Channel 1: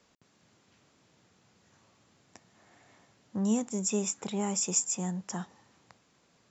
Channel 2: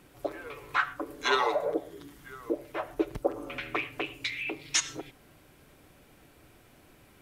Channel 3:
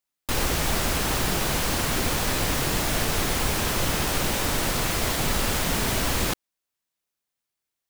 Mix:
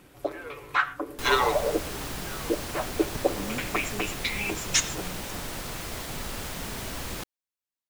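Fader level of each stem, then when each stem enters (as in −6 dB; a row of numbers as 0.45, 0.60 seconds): −9.5, +3.0, −10.5 decibels; 0.00, 0.00, 0.90 seconds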